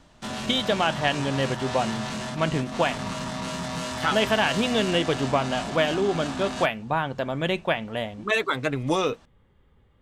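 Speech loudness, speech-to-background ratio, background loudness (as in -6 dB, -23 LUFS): -25.5 LUFS, 6.5 dB, -32.0 LUFS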